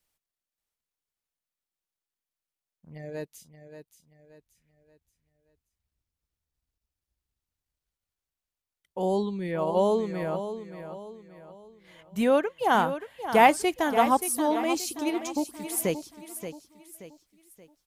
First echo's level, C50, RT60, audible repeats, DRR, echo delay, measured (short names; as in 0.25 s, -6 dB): -10.5 dB, none, none, 3, none, 0.578 s